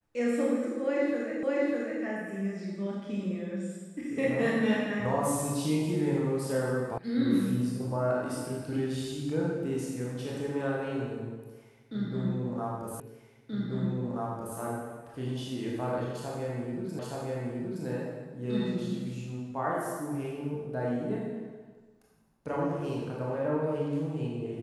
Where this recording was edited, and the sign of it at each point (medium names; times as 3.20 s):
1.43 s: repeat of the last 0.6 s
6.98 s: sound stops dead
13.00 s: repeat of the last 1.58 s
16.99 s: repeat of the last 0.87 s